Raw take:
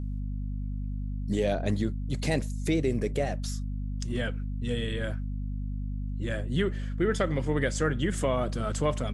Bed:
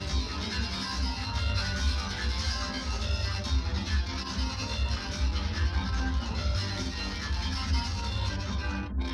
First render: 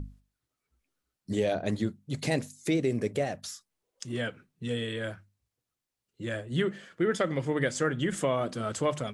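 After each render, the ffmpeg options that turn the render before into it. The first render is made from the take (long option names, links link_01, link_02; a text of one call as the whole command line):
ffmpeg -i in.wav -af "bandreject=frequency=50:width_type=h:width=6,bandreject=frequency=100:width_type=h:width=6,bandreject=frequency=150:width_type=h:width=6,bandreject=frequency=200:width_type=h:width=6,bandreject=frequency=250:width_type=h:width=6" out.wav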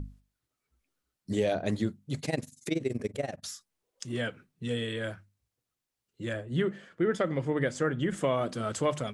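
ffmpeg -i in.wav -filter_complex "[0:a]asettb=1/sr,asplit=3[link_01][link_02][link_03];[link_01]atrim=end=2.204[link_04];[link_02]atrim=start=2.2:end=3.44,asetpts=PTS-STARTPTS,afade=type=in:duration=0.004:curve=qsin,afade=type=out:start_time=1.236:duration=0.004:curve=qsin,tremolo=f=21:d=0.889[link_05];[link_03]atrim=start=3.436[link_06];[link_04][link_05]acrossfade=duration=0.004:curve1=hsin:curve2=qsin[link_07];[link_07][link_06]acrossfade=duration=0.004:curve1=qsin:curve2=hsin,asettb=1/sr,asplit=3[link_08][link_09][link_10];[link_08]atrim=end=6.334[link_11];[link_09]atrim=start=6.33:end=8.24,asetpts=PTS-STARTPTS,afade=type=in:duration=0.004:curve=qsin,afade=type=out:start_time=1.906:duration=0.004:curve=qsin,highshelf=frequency=2400:gain=-7.5[link_12];[link_10]atrim=start=8.236[link_13];[link_11][link_12]acrossfade=duration=0.004:curve1=hsin:curve2=qsin[link_14];[link_14][link_13]acrossfade=duration=0.004:curve1=qsin:curve2=hsin" out.wav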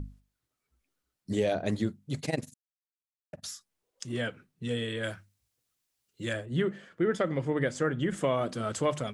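ffmpeg -i in.wav -filter_complex "[0:a]asettb=1/sr,asplit=3[link_01][link_02][link_03];[link_01]atrim=end=5.034[link_04];[link_02]atrim=start=5.03:end=6.46,asetpts=PTS-STARTPTS,afade=type=in:duration=0.004:curve=qsin,afade=type=out:start_time=1.426:duration=0.004:curve=qsin,highshelf=frequency=2200:gain=8[link_05];[link_03]atrim=start=6.456[link_06];[link_04][link_05]acrossfade=duration=0.004:curve1=hsin:curve2=qsin[link_07];[link_07][link_06]acrossfade=duration=0.004:curve1=qsin:curve2=hsin,asplit=3[link_08][link_09][link_10];[link_08]atrim=end=2.54,asetpts=PTS-STARTPTS,afade=type=out:start_time=2.536:duration=0.004:curve=hsin[link_11];[link_09]atrim=start=2.54:end=3.33,asetpts=PTS-STARTPTS,volume=0[link_12];[link_10]atrim=start=3.33,asetpts=PTS-STARTPTS,afade=type=in:duration=0.004:curve=hsin[link_13];[link_11][link_12][link_13]concat=n=3:v=0:a=1" out.wav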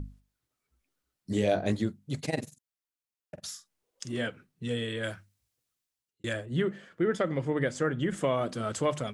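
ffmpeg -i in.wav -filter_complex "[0:a]asettb=1/sr,asplit=3[link_01][link_02][link_03];[link_01]atrim=end=1.334[link_04];[link_02]atrim=start=1.33:end=1.73,asetpts=PTS-STARTPTS,afade=type=in:duration=0.004:curve=qsin,afade=type=out:start_time=0.396:duration=0.004:curve=qsin,asplit=2[link_05][link_06];[link_06]adelay=20,volume=-4.5dB[link_07];[link_05][link_07]amix=inputs=2:normalize=0,atrim=end_sample=17640[link_08];[link_03]atrim=start=1.726[link_09];[link_04][link_08]acrossfade=duration=0.004:curve1=hsin:curve2=qsin[link_10];[link_10][link_09]acrossfade=duration=0.004:curve1=qsin:curve2=hsin,asettb=1/sr,asplit=3[link_11][link_12][link_13];[link_11]atrim=end=2.284[link_14];[link_12]atrim=start=2.28:end=4.27,asetpts=PTS-STARTPTS,afade=type=in:duration=0.004:curve=qsin,afade=type=out:start_time=1.986:duration=0.004:curve=qsin,asplit=2[link_15][link_16];[link_16]adelay=46,volume=-10dB[link_17];[link_15][link_17]amix=inputs=2:normalize=0,atrim=end_sample=87759[link_18];[link_13]atrim=start=4.266[link_19];[link_14][link_18]acrossfade=duration=0.004:curve1=hsin:curve2=qsin[link_20];[link_20][link_19]acrossfade=duration=0.004:curve1=qsin:curve2=hsin,asplit=2[link_21][link_22];[link_21]atrim=end=6.24,asetpts=PTS-STARTPTS,afade=type=out:start_time=5.13:duration=1.11:curve=qsin[link_23];[link_22]atrim=start=6.24,asetpts=PTS-STARTPTS,afade=type=in:duration=0.004:curve=hsin[link_24];[link_23][link_24]concat=n=2:v=0:a=1" out.wav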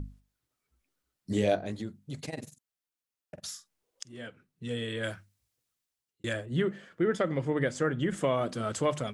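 ffmpeg -i in.wav -filter_complex "[0:a]asettb=1/sr,asplit=3[link_01][link_02][link_03];[link_01]atrim=end=1.554[link_04];[link_02]atrim=start=1.55:end=3.4,asetpts=PTS-STARTPTS,afade=type=in:duration=0.004:curve=qsin,afade=type=out:start_time=1.846:duration=0.004:curve=qsin,acompressor=threshold=-38dB:ratio=2:attack=3.2:release=140:knee=1:detection=peak[link_05];[link_03]atrim=start=3.396[link_06];[link_04][link_05]acrossfade=duration=0.004:curve1=hsin:curve2=qsin[link_07];[link_07][link_06]acrossfade=duration=0.004:curve1=qsin:curve2=hsin,asplit=2[link_08][link_09];[link_08]atrim=end=4.03,asetpts=PTS-STARTPTS,afade=type=out:start_time=4.026:duration=0.004:curve=hsin:silence=0.125893[link_10];[link_09]atrim=start=4.03,asetpts=PTS-STARTPTS,afade=type=in:duration=0.99:silence=0.125893[link_11];[link_10][link_11]concat=n=2:v=0:a=1" out.wav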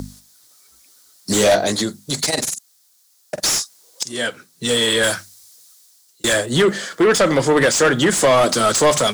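ffmpeg -i in.wav -filter_complex "[0:a]acrossover=split=170[link_01][link_02];[link_02]aexciter=amount=7.3:drive=5.6:freq=3900[link_03];[link_01][link_03]amix=inputs=2:normalize=0,asplit=2[link_04][link_05];[link_05]highpass=frequency=720:poles=1,volume=31dB,asoftclip=type=tanh:threshold=-4dB[link_06];[link_04][link_06]amix=inputs=2:normalize=0,lowpass=frequency=2900:poles=1,volume=-6dB" out.wav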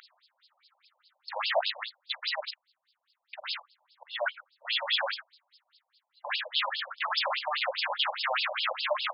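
ffmpeg -i in.wav -af "aeval=exprs='0.15*(abs(mod(val(0)/0.15+3,4)-2)-1)':channel_layout=same,afftfilt=real='re*between(b*sr/1024,710*pow(3800/710,0.5+0.5*sin(2*PI*4.9*pts/sr))/1.41,710*pow(3800/710,0.5+0.5*sin(2*PI*4.9*pts/sr))*1.41)':imag='im*between(b*sr/1024,710*pow(3800/710,0.5+0.5*sin(2*PI*4.9*pts/sr))/1.41,710*pow(3800/710,0.5+0.5*sin(2*PI*4.9*pts/sr))*1.41)':win_size=1024:overlap=0.75" out.wav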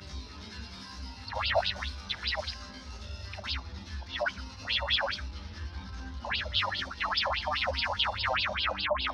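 ffmpeg -i in.wav -i bed.wav -filter_complex "[1:a]volume=-11.5dB[link_01];[0:a][link_01]amix=inputs=2:normalize=0" out.wav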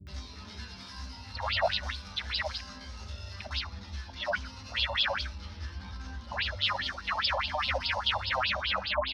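ffmpeg -i in.wav -filter_complex "[0:a]acrossover=split=320[link_01][link_02];[link_02]adelay=70[link_03];[link_01][link_03]amix=inputs=2:normalize=0" out.wav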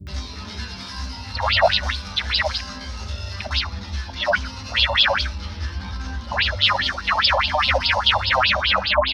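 ffmpeg -i in.wav -af "volume=11.5dB" out.wav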